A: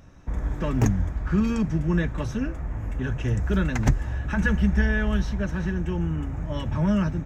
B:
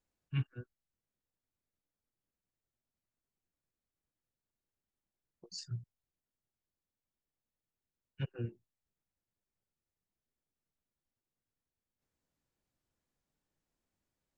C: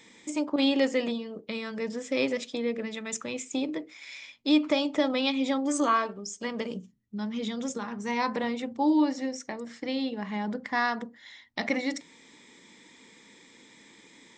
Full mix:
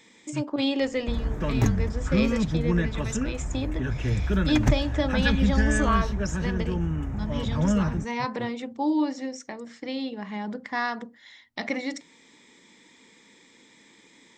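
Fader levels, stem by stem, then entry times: -1.0 dB, -1.5 dB, -1.0 dB; 0.80 s, 0.00 s, 0.00 s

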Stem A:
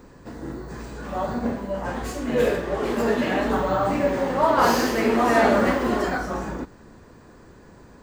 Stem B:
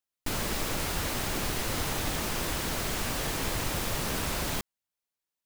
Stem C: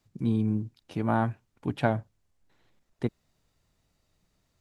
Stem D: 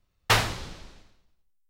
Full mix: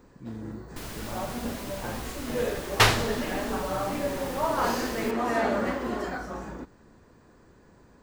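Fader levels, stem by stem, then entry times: -8.0 dB, -8.5 dB, -13.5 dB, +2.0 dB; 0.00 s, 0.50 s, 0.00 s, 2.50 s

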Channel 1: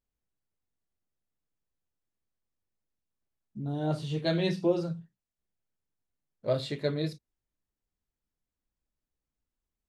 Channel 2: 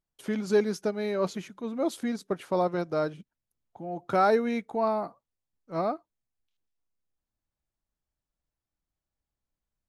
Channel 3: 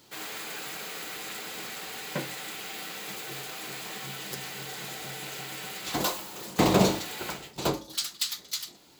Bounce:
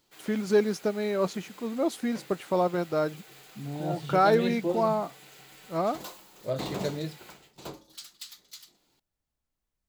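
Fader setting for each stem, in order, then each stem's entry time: -3.0 dB, +1.0 dB, -13.5 dB; 0.00 s, 0.00 s, 0.00 s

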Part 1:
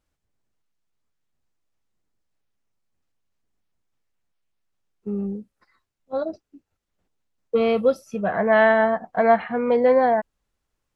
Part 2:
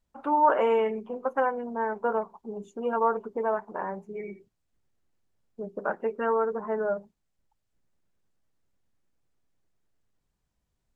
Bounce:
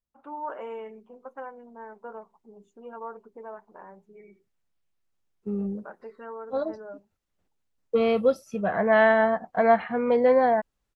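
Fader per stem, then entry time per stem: -2.5 dB, -13.5 dB; 0.40 s, 0.00 s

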